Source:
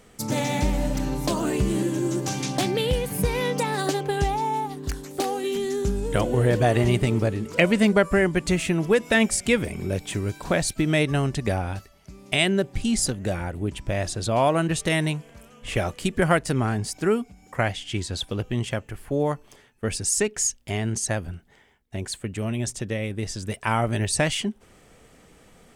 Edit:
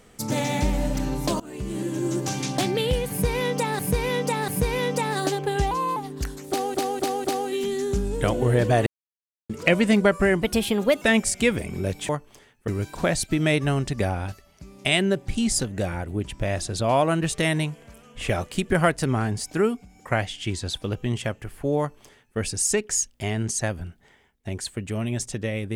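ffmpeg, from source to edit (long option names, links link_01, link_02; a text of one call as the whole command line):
ffmpeg -i in.wav -filter_complex "[0:a]asplit=15[link_01][link_02][link_03][link_04][link_05][link_06][link_07][link_08][link_09][link_10][link_11][link_12][link_13][link_14][link_15];[link_01]atrim=end=1.4,asetpts=PTS-STARTPTS,afade=type=out:start_time=1.396:duration=0.004:curve=hsin:silence=0.0794328[link_16];[link_02]atrim=start=1.4:end=3.792,asetpts=PTS-STARTPTS,afade=type=in:duration=0.73:silence=0.0794328[link_17];[link_03]atrim=start=3.098:end=3.792[link_18];[link_04]atrim=start=3.098:end=4.334[link_19];[link_05]atrim=start=4.33:end=4.63,asetpts=PTS-STARTPTS,asetrate=52038,aresample=44100[link_20];[link_06]atrim=start=4.626:end=5.412[link_21];[link_07]atrim=start=5.158:end=5.412[link_22];[link_08]atrim=start=5.158:end=5.412[link_23];[link_09]atrim=start=5.158:end=6.78,asetpts=PTS-STARTPTS,afade=type=out:start_time=1.618:duration=0.004:curve=hsin[link_24];[link_10]atrim=start=6.78:end=7.41,asetpts=PTS-STARTPTS,volume=0[link_25];[link_11]atrim=start=7.41:end=8.334,asetpts=PTS-STARTPTS,afade=type=in:duration=0.004:curve=hsin[link_26];[link_12]atrim=start=8.33:end=9.08,asetpts=PTS-STARTPTS,asetrate=54684,aresample=44100,atrim=end_sample=26673,asetpts=PTS-STARTPTS[link_27];[link_13]atrim=start=9.076:end=10.152[link_28];[link_14]atrim=start=19.258:end=19.852[link_29];[link_15]atrim=start=10.148[link_30];[link_16][link_17]concat=n=2:v=0:a=1[link_31];[link_31][link_18]acrossfade=duration=0.004:curve1=hsin:curve2=hsin[link_32];[link_32][link_19]acrossfade=duration=0.004:curve1=hsin:curve2=hsin[link_33];[link_33][link_20]acrossfade=duration=0.004:curve1=hsin:curve2=hsin[link_34];[link_34][link_21]acrossfade=duration=0.004:curve1=hsin:curve2=hsin[link_35];[link_35][link_22]acrossfade=duration=0.004:curve1=hsin:curve2=hsin[link_36];[link_36][link_23]acrossfade=duration=0.004:curve1=hsin:curve2=hsin[link_37];[link_24][link_25][link_26]concat=n=3:v=0:a=1[link_38];[link_37][link_38]acrossfade=duration=0.004:curve1=hsin:curve2=hsin[link_39];[link_39][link_27]acrossfade=duration=0.004:curve1=hsin:curve2=hsin[link_40];[link_40][link_28]acrossfade=duration=0.004:curve1=hsin:curve2=hsin[link_41];[link_41][link_29]acrossfade=duration=0.004:curve1=hsin:curve2=hsin[link_42];[link_42][link_30]acrossfade=duration=0.004:curve1=hsin:curve2=hsin" out.wav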